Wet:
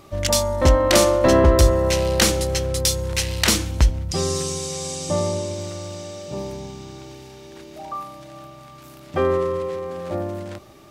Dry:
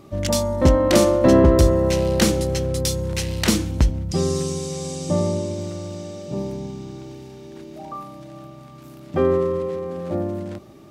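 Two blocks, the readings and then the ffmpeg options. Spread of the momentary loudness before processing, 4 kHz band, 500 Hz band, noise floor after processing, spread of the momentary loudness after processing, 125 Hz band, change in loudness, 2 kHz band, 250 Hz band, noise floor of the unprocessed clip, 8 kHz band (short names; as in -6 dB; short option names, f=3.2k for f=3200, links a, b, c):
22 LU, +5.0 dB, -0.5 dB, -44 dBFS, 19 LU, -1.0 dB, +0.5 dB, +4.5 dB, -4.5 dB, -42 dBFS, +5.0 dB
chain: -af "equalizer=f=210:w=0.52:g=-11,volume=5dB"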